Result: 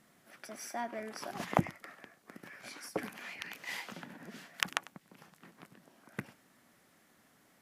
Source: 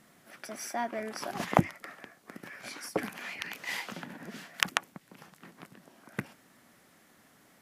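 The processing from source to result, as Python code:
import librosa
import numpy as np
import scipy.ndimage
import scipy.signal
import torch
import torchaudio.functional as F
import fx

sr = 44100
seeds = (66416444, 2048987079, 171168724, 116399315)

y = x + 10.0 ** (-20.0 / 20.0) * np.pad(x, (int(98 * sr / 1000.0), 0))[:len(x)]
y = y * librosa.db_to_amplitude(-5.0)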